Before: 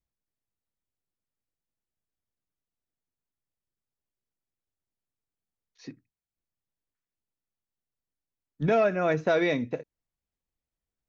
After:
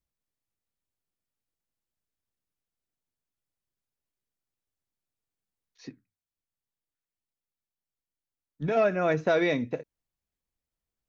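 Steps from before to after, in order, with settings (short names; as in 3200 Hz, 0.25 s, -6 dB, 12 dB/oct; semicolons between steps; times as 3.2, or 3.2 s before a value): 5.89–8.77 flange 1.7 Hz, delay 8.1 ms, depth 8.9 ms, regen -71%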